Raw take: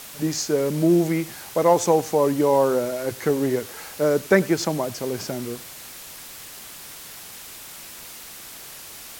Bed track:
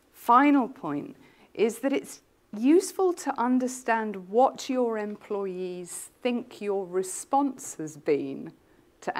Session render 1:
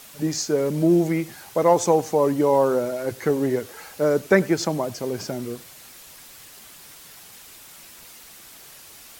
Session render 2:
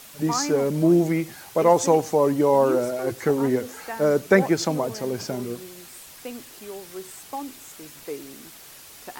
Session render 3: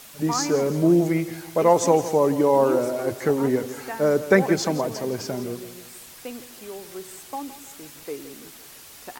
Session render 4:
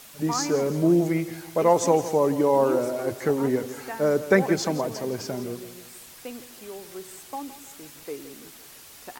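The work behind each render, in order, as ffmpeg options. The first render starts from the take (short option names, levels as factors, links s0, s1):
-af "afftdn=nr=6:nf=-40"
-filter_complex "[1:a]volume=0.355[s0];[0:a][s0]amix=inputs=2:normalize=0"
-af "aecho=1:1:166|332|498|664:0.2|0.0858|0.0369|0.0159"
-af "volume=0.794"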